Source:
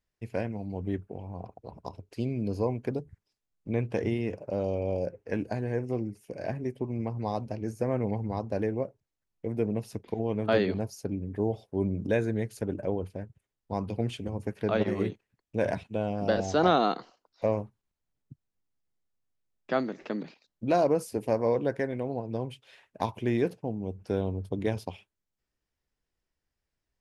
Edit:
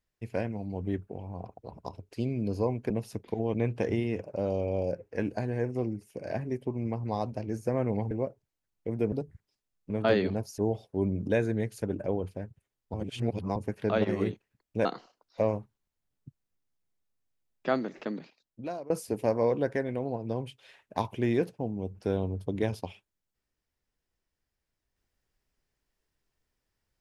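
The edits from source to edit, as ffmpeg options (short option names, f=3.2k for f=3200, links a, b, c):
-filter_complex "[0:a]asplit=11[a][b][c][d][e][f][g][h][i][j][k];[a]atrim=end=2.902[l];[b]atrim=start=9.698:end=10.342[m];[c]atrim=start=3.678:end=8.252[n];[d]atrim=start=8.688:end=9.702[o];[e]atrim=start=2.898:end=3.682[p];[f]atrim=start=10.338:end=11.022[q];[g]atrim=start=11.368:end=13.732[r];[h]atrim=start=13.728:end=14.352,asetpts=PTS-STARTPTS,areverse[s];[i]atrim=start=14.348:end=15.642[t];[j]atrim=start=16.888:end=20.94,asetpts=PTS-STARTPTS,afade=t=out:st=3.092:d=0.96:silence=0.0630957[u];[k]atrim=start=20.94,asetpts=PTS-STARTPTS,afade=t=in:d=0.004:c=hsin:silence=0.0630957[v];[l][m]acrossfade=d=0.004:c1=hsin:c2=hsin[w];[w][n]acrossfade=d=0.004:c1=hsin:c2=hsin[x];[x][o]acrossfade=d=0.004:c1=hsin:c2=hsin[y];[y][p]acrossfade=d=0.004:c1=hsin:c2=hsin[z];[z][q]acrossfade=d=0.004:c1=hsin:c2=hsin[aa];[aa][r]acrossfade=d=0.004:c1=hsin:c2=hsin[ab];[ab][s]acrossfade=d=0.004:c1=hsin:c2=hsin[ac];[ac][t]acrossfade=d=0.004:c1=hsin:c2=hsin[ad];[u][v]concat=n=2:v=0:a=1[ae];[ad][ae]acrossfade=d=0.004:c1=hsin:c2=hsin"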